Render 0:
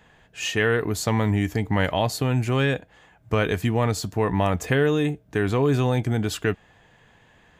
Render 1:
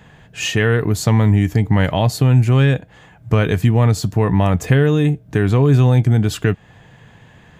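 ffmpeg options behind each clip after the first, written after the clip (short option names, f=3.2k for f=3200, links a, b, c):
-filter_complex "[0:a]equalizer=f=130:t=o:w=1.5:g=9.5,asplit=2[a][b];[b]acompressor=threshold=-26dB:ratio=6,volume=2dB[c];[a][c]amix=inputs=2:normalize=0"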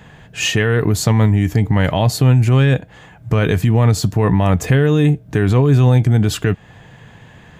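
-af "alimiter=limit=-9.5dB:level=0:latency=1:release=28,volume=3.5dB"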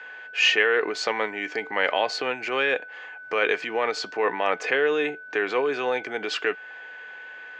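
-af "aeval=exprs='val(0)+0.0112*sin(2*PI*1500*n/s)':c=same,highpass=f=460:w=0.5412,highpass=f=460:w=1.3066,equalizer=f=640:t=q:w=4:g=-6,equalizer=f=970:t=q:w=4:g=-4,equalizer=f=2.3k:t=q:w=4:g=4,equalizer=f=3.7k:t=q:w=4:g=-6,lowpass=f=4.7k:w=0.5412,lowpass=f=4.7k:w=1.3066"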